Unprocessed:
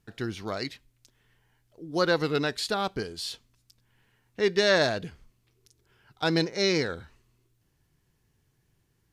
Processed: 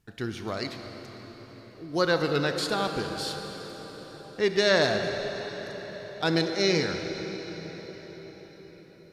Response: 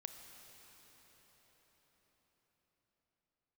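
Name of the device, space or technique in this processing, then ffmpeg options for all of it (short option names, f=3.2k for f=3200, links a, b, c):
cathedral: -filter_complex "[1:a]atrim=start_sample=2205[a];[0:a][a]afir=irnorm=-1:irlink=0,volume=5dB"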